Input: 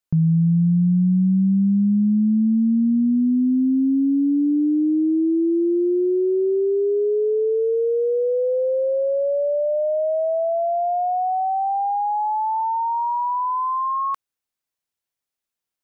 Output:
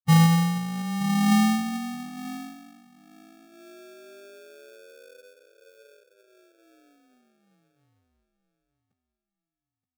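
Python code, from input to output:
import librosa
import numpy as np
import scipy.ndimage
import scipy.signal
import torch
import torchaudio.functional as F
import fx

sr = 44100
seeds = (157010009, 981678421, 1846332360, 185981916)

p1 = scipy.signal.sosfilt(scipy.signal.butter(4, 69.0, 'highpass', fs=sr, output='sos'), x)
p2 = fx.peak_eq(p1, sr, hz=130.0, db=15.0, octaves=3.0)
p3 = fx.fixed_phaser(p2, sr, hz=1100.0, stages=6)
p4 = fx.stretch_vocoder_free(p3, sr, factor=0.63)
p5 = 10.0 ** (-16.5 / 20.0) * np.tanh(p4 / 10.0 ** (-16.5 / 20.0))
p6 = p4 + F.gain(torch.from_numpy(p5), -6.5).numpy()
p7 = fx.filter_sweep_lowpass(p6, sr, from_hz=880.0, to_hz=260.0, start_s=0.55, end_s=1.33, q=2.2)
p8 = fx.sample_hold(p7, sr, seeds[0], rate_hz=1000.0, jitter_pct=0)
p9 = p8 + fx.echo_feedback(p8, sr, ms=925, feedback_pct=29, wet_db=-13.5, dry=0)
p10 = fx.upward_expand(p9, sr, threshold_db=-19.0, expansion=2.5)
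y = F.gain(torch.from_numpy(p10), -8.0).numpy()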